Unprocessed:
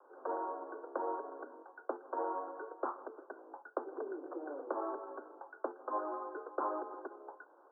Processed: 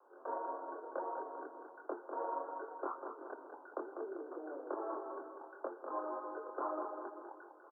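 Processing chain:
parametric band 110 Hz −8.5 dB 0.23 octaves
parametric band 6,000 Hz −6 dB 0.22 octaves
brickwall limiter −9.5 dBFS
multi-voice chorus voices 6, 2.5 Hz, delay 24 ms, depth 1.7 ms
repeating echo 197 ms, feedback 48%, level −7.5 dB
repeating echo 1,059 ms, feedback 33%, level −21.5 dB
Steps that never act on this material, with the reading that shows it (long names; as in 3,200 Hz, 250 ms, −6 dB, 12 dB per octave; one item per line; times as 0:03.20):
parametric band 110 Hz: nothing at its input below 230 Hz
parametric band 6,000 Hz: nothing at its input above 1,700 Hz
brickwall limiter −9.5 dBFS: peak of its input −22.0 dBFS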